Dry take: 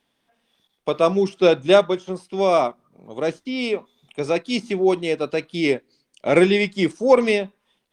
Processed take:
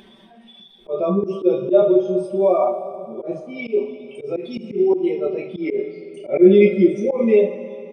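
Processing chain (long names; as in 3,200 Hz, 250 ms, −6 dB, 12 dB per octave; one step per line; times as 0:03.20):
expanding power law on the bin magnitudes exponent 1.9
comb filter 5.2 ms, depth 78%
coupled-rooms reverb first 0.3 s, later 2.6 s, from −18 dB, DRR −6 dB
upward compression, threshold −25 dBFS
volume swells 101 ms
level −6.5 dB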